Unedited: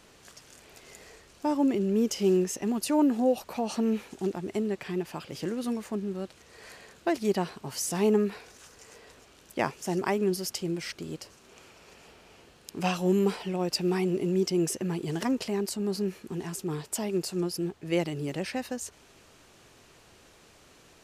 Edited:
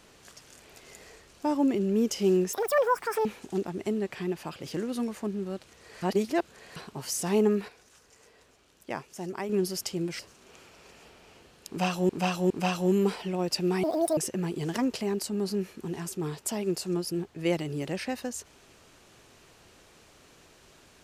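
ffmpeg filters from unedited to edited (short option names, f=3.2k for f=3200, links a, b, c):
-filter_complex "[0:a]asplit=12[a][b][c][d][e][f][g][h][i][j][k][l];[a]atrim=end=2.534[m];[b]atrim=start=2.53:end=3.94,asetpts=PTS-STARTPTS,asetrate=85995,aresample=44100[n];[c]atrim=start=3.936:end=6.712[o];[d]atrim=start=6.708:end=7.452,asetpts=PTS-STARTPTS,areverse[p];[e]atrim=start=7.448:end=8.372[q];[f]atrim=start=8.368:end=10.182,asetpts=PTS-STARTPTS,volume=-7dB[r];[g]atrim=start=10.178:end=10.882[s];[h]atrim=start=11.218:end=13.122[t];[i]atrim=start=12.708:end=13.122[u];[j]atrim=start=12.708:end=14.044[v];[k]atrim=start=14.04:end=14.64,asetpts=PTS-STARTPTS,asetrate=78057,aresample=44100,atrim=end_sample=14949,asetpts=PTS-STARTPTS[w];[l]atrim=start=14.636[x];[m][n]acrossfade=d=0.004:c1=hsin:c2=hsin[y];[y][o]acrossfade=d=0.004:c1=hsin:c2=hsin[z];[z][p]acrossfade=d=0.004:c1=hsin:c2=hsin[aa];[aa][q]acrossfade=d=0.004:c1=hsin:c2=hsin[ab];[ab][r]acrossfade=d=0.004:c1=hsin:c2=hsin[ac];[ac][s]acrossfade=d=0.004:c1=hsin:c2=hsin[ad];[ad][t]acrossfade=d=0.004:c1=hsin:c2=hsin[ae];[ae][u]acrossfade=d=0.004:c1=hsin:c2=hsin[af];[af][v]acrossfade=d=0.004:c1=hsin:c2=hsin[ag];[ag][w]acrossfade=d=0.004:c1=hsin:c2=hsin[ah];[ah][x]acrossfade=d=0.004:c1=hsin:c2=hsin"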